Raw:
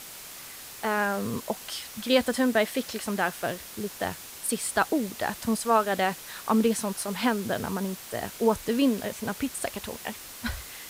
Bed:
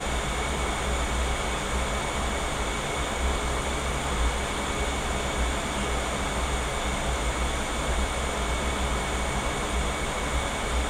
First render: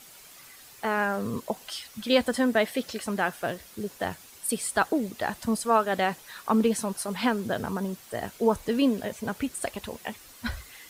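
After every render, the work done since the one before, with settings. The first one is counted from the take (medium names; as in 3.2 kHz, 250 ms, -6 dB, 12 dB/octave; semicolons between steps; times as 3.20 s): noise reduction 9 dB, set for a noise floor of -43 dBFS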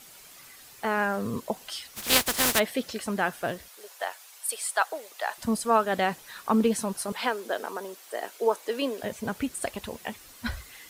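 1.95–2.58 s: spectral contrast reduction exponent 0.27; 3.68–5.38 s: high-pass 590 Hz 24 dB/octave; 7.12–9.03 s: high-pass 350 Hz 24 dB/octave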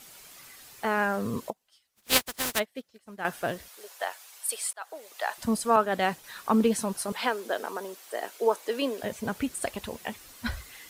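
1.50–3.25 s: upward expansion 2.5:1, over -38 dBFS; 4.73–5.19 s: fade in linear; 5.76–6.24 s: three bands expanded up and down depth 70%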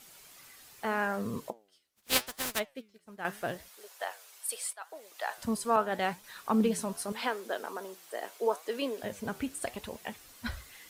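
flange 0.8 Hz, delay 4.3 ms, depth 8.7 ms, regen +86%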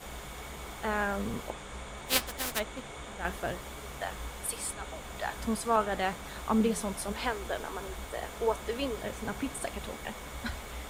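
add bed -15 dB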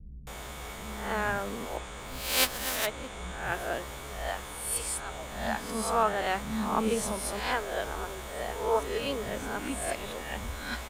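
reverse spectral sustain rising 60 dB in 0.68 s; bands offset in time lows, highs 270 ms, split 210 Hz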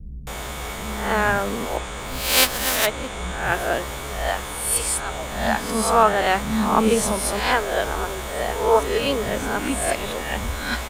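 trim +10 dB; peak limiter -2 dBFS, peak gain reduction 3 dB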